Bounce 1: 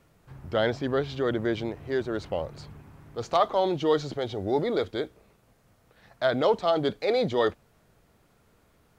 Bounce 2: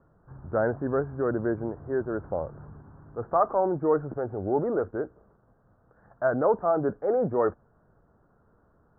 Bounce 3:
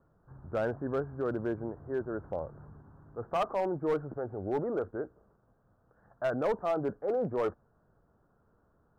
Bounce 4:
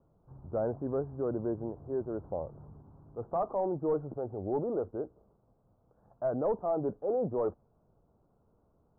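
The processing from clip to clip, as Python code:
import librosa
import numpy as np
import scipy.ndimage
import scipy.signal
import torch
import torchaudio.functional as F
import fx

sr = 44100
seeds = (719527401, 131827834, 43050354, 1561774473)

y1 = scipy.signal.sosfilt(scipy.signal.butter(12, 1600.0, 'lowpass', fs=sr, output='sos'), x)
y2 = np.clip(y1, -10.0 ** (-18.5 / 20.0), 10.0 ** (-18.5 / 20.0))
y2 = y2 * 10.0 ** (-5.5 / 20.0)
y3 = scipy.signal.sosfilt(scipy.signal.butter(4, 1000.0, 'lowpass', fs=sr, output='sos'), y2)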